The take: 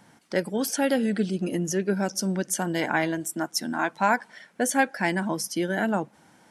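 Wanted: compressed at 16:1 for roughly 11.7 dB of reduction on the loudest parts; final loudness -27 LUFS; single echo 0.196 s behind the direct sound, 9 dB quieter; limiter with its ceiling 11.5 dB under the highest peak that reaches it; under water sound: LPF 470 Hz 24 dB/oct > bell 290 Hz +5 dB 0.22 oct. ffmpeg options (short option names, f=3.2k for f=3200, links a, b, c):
-af "acompressor=threshold=-27dB:ratio=16,alimiter=level_in=2.5dB:limit=-24dB:level=0:latency=1,volume=-2.5dB,lowpass=f=470:w=0.5412,lowpass=f=470:w=1.3066,equalizer=f=290:t=o:w=0.22:g=5,aecho=1:1:196:0.355,volume=10dB"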